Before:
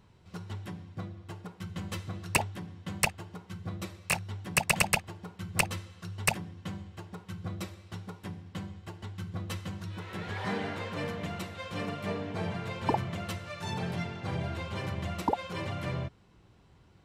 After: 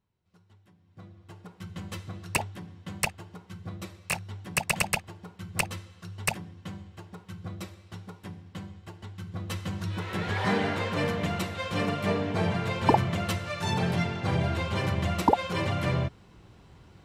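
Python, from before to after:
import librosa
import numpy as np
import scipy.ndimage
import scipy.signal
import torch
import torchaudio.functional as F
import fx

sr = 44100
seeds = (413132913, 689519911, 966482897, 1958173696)

y = fx.gain(x, sr, db=fx.line((0.78, -20.0), (1.03, -8.0), (1.63, -1.0), (9.23, -1.0), (9.87, 7.0)))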